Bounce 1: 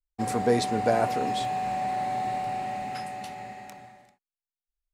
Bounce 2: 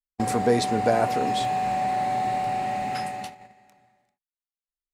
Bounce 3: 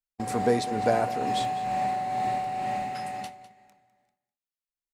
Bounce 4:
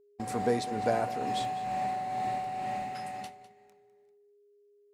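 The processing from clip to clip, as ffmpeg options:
-filter_complex "[0:a]agate=range=0.0891:threshold=0.0158:ratio=16:detection=peak,asplit=2[s0][s1];[s1]acompressor=threshold=0.02:ratio=6,volume=1.26[s2];[s0][s2]amix=inputs=2:normalize=0"
-af "tremolo=f=2.2:d=0.44,aecho=1:1:202:0.158,volume=0.794"
-af "aeval=exprs='val(0)+0.00158*sin(2*PI*410*n/s)':c=same,volume=0.596"

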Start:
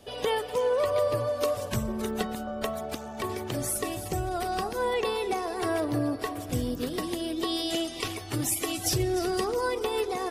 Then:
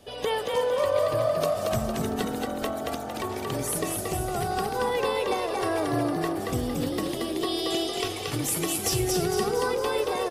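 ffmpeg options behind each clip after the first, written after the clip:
-filter_complex "[0:a]asplit=7[s0][s1][s2][s3][s4][s5][s6];[s1]adelay=228,afreqshift=45,volume=0.708[s7];[s2]adelay=456,afreqshift=90,volume=0.331[s8];[s3]adelay=684,afreqshift=135,volume=0.157[s9];[s4]adelay=912,afreqshift=180,volume=0.0733[s10];[s5]adelay=1140,afreqshift=225,volume=0.0347[s11];[s6]adelay=1368,afreqshift=270,volume=0.0162[s12];[s0][s7][s8][s9][s10][s11][s12]amix=inputs=7:normalize=0"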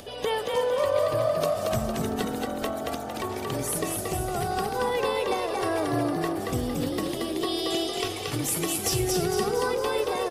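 -af "acompressor=mode=upward:threshold=0.0126:ratio=2.5"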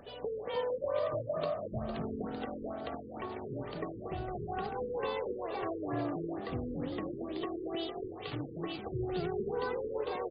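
-af "bandreject=f=50:t=h:w=6,bandreject=f=100:t=h:w=6,afftfilt=real='re*lt(b*sr/1024,500*pow(5000/500,0.5+0.5*sin(2*PI*2.2*pts/sr)))':imag='im*lt(b*sr/1024,500*pow(5000/500,0.5+0.5*sin(2*PI*2.2*pts/sr)))':win_size=1024:overlap=0.75,volume=0.376"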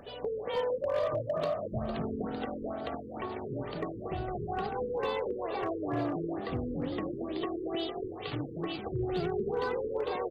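-af "asoftclip=type=hard:threshold=0.0447,volume=1.41"

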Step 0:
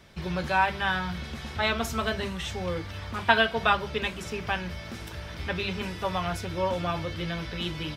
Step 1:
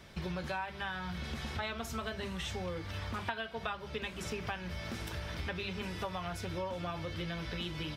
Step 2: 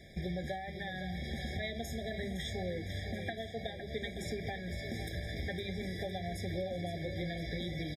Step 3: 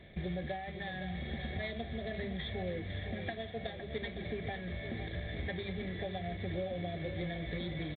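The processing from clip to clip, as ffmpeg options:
-af "acompressor=threshold=0.0178:ratio=8"
-af "aecho=1:1:510|1020|1530|2040|2550|3060:0.316|0.174|0.0957|0.0526|0.0289|0.0159,afftfilt=real='re*eq(mod(floor(b*sr/1024/800),2),0)':imag='im*eq(mod(floor(b*sr/1024/800),2),0)':win_size=1024:overlap=0.75,volume=1.12"
-ar 8000 -c:a adpcm_g726 -b:a 24k

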